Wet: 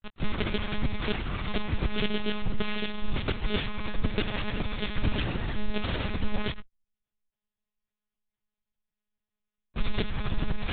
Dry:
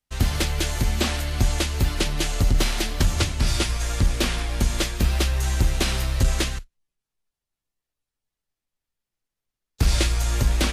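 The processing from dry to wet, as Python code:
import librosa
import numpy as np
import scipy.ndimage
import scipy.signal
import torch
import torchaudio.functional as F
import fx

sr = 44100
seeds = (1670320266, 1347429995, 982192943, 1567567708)

y = x + 0.6 * np.pad(x, (int(6.0 * sr / 1000.0), 0))[:len(x)]
y = fx.rider(y, sr, range_db=10, speed_s=0.5)
y = fx.granulator(y, sr, seeds[0], grain_ms=100.0, per_s=20.0, spray_ms=100.0, spread_st=0)
y = fx.lpc_monotone(y, sr, seeds[1], pitch_hz=210.0, order=10)
y = F.gain(torch.from_numpy(y), -4.0).numpy()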